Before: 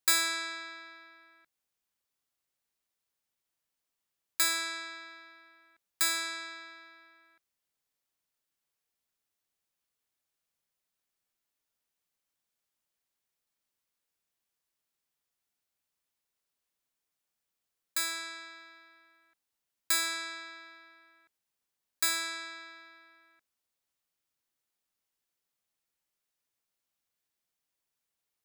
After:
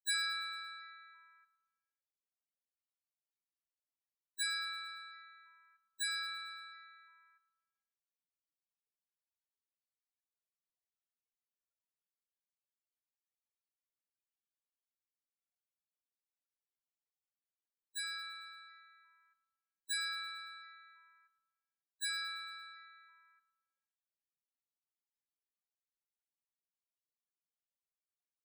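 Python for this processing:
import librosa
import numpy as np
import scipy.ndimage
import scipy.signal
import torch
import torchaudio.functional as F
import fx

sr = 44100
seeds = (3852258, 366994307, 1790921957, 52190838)

y = fx.spec_topn(x, sr, count=8)
y = fx.echo_feedback(y, sr, ms=113, feedback_pct=57, wet_db=-16)
y = y * 10.0 ** (-3.5 / 20.0)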